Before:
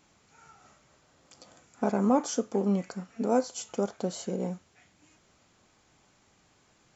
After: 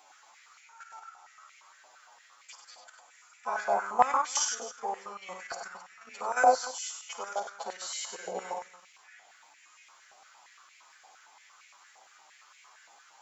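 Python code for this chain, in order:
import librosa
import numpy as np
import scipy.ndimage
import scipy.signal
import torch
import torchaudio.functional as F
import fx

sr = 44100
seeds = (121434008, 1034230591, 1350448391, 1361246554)

y = fx.high_shelf(x, sr, hz=4700.0, db=4.5)
y = fx.stretch_vocoder(y, sr, factor=1.9)
y = fx.level_steps(y, sr, step_db=11)
y = fx.echo_multitap(y, sr, ms=(54, 97, 263), db=(-9.5, -6.0, -15.5))
y = fx.filter_held_highpass(y, sr, hz=8.7, low_hz=750.0, high_hz=2200.0)
y = y * librosa.db_to_amplitude(4.5)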